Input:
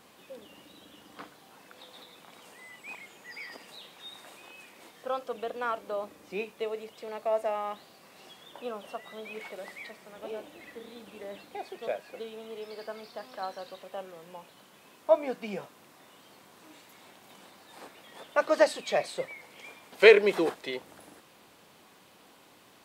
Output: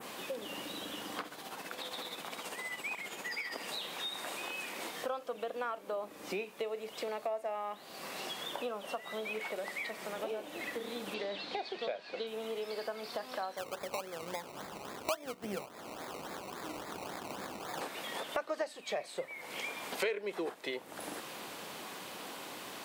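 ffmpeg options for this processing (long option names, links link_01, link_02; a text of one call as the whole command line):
ffmpeg -i in.wav -filter_complex "[0:a]asettb=1/sr,asplit=3[link_01][link_02][link_03];[link_01]atrim=end=1.204[link_04];[link_02]atrim=start=1.2:end=3.56,asetpts=PTS-STARTPTS,afade=type=in:duration=0.004:curve=qsin,afade=type=out:start_time=2.356:duration=0.004:curve=qsin,tremolo=f=15:d=0.52[link_05];[link_03]atrim=start=3.556[link_06];[link_04][link_05]acrossfade=duration=0.004:curve1=hsin:curve2=qsin[link_07];[link_07][link_06]acrossfade=duration=0.004:curve1=qsin:curve2=hsin,asettb=1/sr,asplit=3[link_08][link_09][link_10];[link_08]atrim=end=11.144[link_11];[link_09]atrim=start=11.14:end=12.27,asetpts=PTS-STARTPTS,afade=type=in:duration=0.004:curve=qsin,afade=type=out:start_time=1.126:duration=0.004:curve=qsin,lowpass=frequency=4300:width_type=q:width=3.1[link_12];[link_10]atrim=start=12.266[link_13];[link_11][link_12]acrossfade=duration=0.004:curve1=hsin:curve2=qsin[link_14];[link_14][link_13]acrossfade=duration=0.004:curve1=qsin:curve2=hsin,asplit=3[link_15][link_16][link_17];[link_15]afade=type=out:start_time=13.56:duration=0.02[link_18];[link_16]acrusher=samples=21:mix=1:aa=0.000001:lfo=1:lforange=12.6:lforate=3.6,afade=type=in:start_time=13.56:duration=0.02,afade=type=out:start_time=17.8:duration=0.02[link_19];[link_17]afade=type=in:start_time=17.8:duration=0.02[link_20];[link_18][link_19][link_20]amix=inputs=3:normalize=0,highpass=frequency=230:poles=1,adynamicequalizer=threshold=0.00282:dfrequency=4700:dqfactor=0.75:tfrequency=4700:tqfactor=0.75:attack=5:release=100:ratio=0.375:range=2:mode=cutabove:tftype=bell,acompressor=threshold=-50dB:ratio=5,volume=13dB" out.wav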